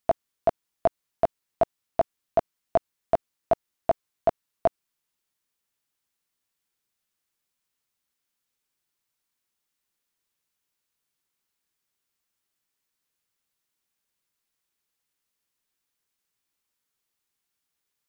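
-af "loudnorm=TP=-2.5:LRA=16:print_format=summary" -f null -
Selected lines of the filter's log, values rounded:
Input Integrated:    -29.2 LUFS
Input True Peak:      -9.5 dBTP
Input LRA:             6.1 LU
Input Threshold:     -39.2 LUFS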